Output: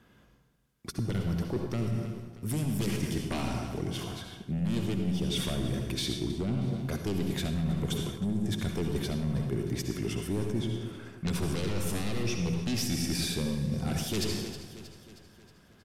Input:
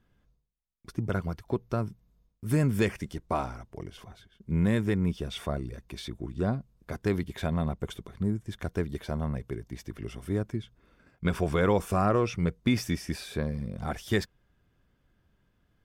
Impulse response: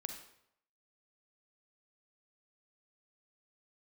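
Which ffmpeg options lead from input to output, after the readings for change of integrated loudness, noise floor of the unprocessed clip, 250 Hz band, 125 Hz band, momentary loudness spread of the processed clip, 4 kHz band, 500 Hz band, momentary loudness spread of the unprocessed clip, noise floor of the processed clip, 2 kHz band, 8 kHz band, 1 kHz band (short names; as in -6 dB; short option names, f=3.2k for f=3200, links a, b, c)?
-1.5 dB, -71 dBFS, -0.5 dB, 0.0 dB, 7 LU, +6.5 dB, -4.5 dB, 14 LU, -60 dBFS, -4.0 dB, +8.0 dB, -8.0 dB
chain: -filter_complex "[0:a]asplit=2[a][b];[b]asoftclip=type=tanh:threshold=-29dB,volume=-8.5dB[c];[a][c]amix=inputs=2:normalize=0,highpass=f=170:p=1,aeval=exprs='0.251*sin(PI/2*3.55*val(0)/0.251)':c=same,acrossover=split=390|3000[d][e][f];[e]acompressor=threshold=-43dB:ratio=2[g];[d][g][f]amix=inputs=3:normalize=0,aecho=1:1:316|632|948|1264|1580:0.141|0.0749|0.0397|0.021|0.0111[h];[1:a]atrim=start_sample=2205,asetrate=27783,aresample=44100[i];[h][i]afir=irnorm=-1:irlink=0,areverse,acompressor=threshold=-22dB:ratio=6,areverse,volume=-5dB"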